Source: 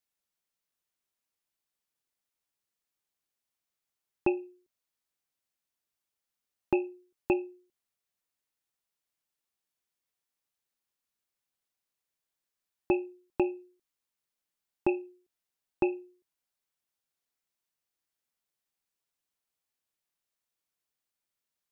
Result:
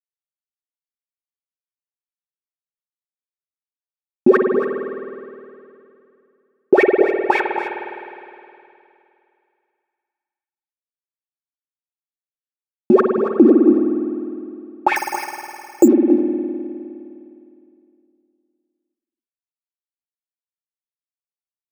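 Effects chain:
high-shelf EQ 2,200 Hz −8 dB
in parallel at +3 dB: downward compressor 4 to 1, threshold −39 dBFS, peak gain reduction 14 dB
on the sum: bit reduction 5 bits
LFO wah 3.7 Hz 220–2,300 Hz, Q 14
notch comb filter 1,000 Hz
on a send: single-tap delay 278 ms −11.5 dB
on the sum: spring reverb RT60 2.6 s, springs 51 ms, chirp 40 ms, DRR 5 dB
0:14.96–0:15.88: bad sample-rate conversion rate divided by 6×, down filtered, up hold
boost into a limiter +31 dB
level −1 dB

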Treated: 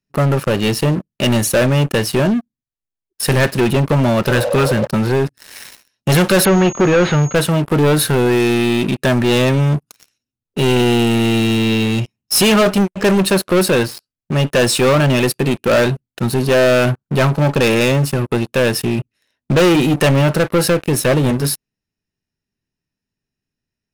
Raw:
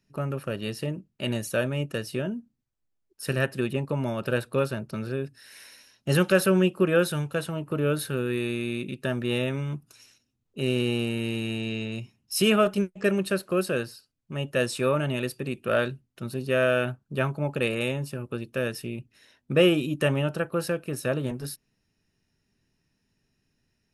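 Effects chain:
0:04.33–0:04.84: healed spectral selection 490–1,100 Hz before
leveller curve on the samples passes 5
0:06.45–0:07.35: switching amplifier with a slow clock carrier 6,600 Hz

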